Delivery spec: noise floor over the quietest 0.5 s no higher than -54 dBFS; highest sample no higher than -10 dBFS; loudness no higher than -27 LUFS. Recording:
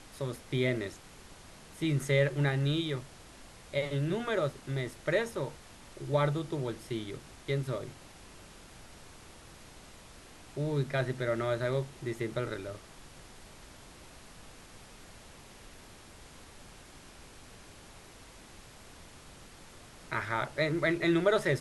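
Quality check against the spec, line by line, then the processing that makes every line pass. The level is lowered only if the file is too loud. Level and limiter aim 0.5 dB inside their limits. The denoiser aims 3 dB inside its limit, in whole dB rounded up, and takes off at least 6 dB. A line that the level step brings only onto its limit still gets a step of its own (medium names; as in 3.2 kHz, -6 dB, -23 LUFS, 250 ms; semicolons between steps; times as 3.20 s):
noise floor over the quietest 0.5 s -52 dBFS: fail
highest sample -14.5 dBFS: pass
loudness -32.5 LUFS: pass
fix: noise reduction 6 dB, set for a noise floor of -52 dBFS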